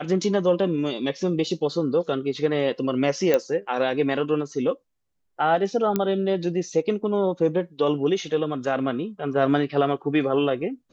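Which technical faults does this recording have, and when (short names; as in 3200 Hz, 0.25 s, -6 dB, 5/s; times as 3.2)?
3.34 pop -8 dBFS
5.96 pop -9 dBFS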